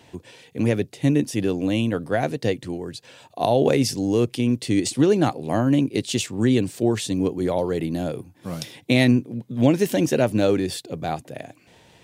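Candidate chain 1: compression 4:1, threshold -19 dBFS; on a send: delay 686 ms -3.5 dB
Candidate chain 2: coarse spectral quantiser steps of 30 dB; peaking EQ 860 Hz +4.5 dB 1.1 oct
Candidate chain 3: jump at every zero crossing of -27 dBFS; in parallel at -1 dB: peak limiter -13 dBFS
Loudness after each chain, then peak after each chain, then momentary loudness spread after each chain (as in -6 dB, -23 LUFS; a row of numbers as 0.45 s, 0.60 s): -24.5 LUFS, -22.0 LUFS, -17.0 LUFS; -5.5 dBFS, -3.5 dBFS, -1.5 dBFS; 6 LU, 15 LU, 9 LU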